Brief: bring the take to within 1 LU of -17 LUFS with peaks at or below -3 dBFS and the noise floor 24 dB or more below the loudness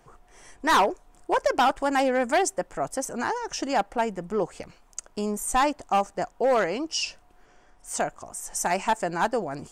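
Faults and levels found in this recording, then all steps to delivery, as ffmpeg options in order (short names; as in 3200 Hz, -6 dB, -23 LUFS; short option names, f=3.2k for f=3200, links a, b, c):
loudness -26.0 LUFS; peak -15.0 dBFS; loudness target -17.0 LUFS
-> -af "volume=9dB"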